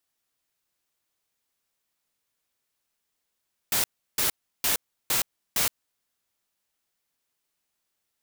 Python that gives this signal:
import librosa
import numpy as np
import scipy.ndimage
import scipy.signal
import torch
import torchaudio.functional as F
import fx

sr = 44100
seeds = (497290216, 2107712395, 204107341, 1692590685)

y = fx.noise_burst(sr, seeds[0], colour='white', on_s=0.12, off_s=0.34, bursts=5, level_db=-24.0)